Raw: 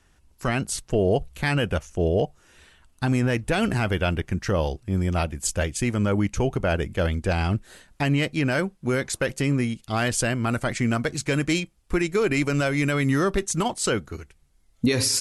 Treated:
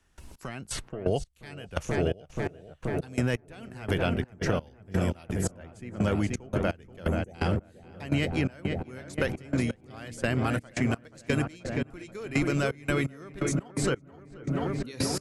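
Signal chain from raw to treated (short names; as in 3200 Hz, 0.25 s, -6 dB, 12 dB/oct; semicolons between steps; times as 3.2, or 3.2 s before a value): spectral delete 7.08–7.34, 880–5800 Hz; darkening echo 0.481 s, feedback 81%, low-pass 2000 Hz, level -7 dB; step gate ".x..x.x...xx" 85 bpm -24 dB; three-band squash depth 70%; gain -4 dB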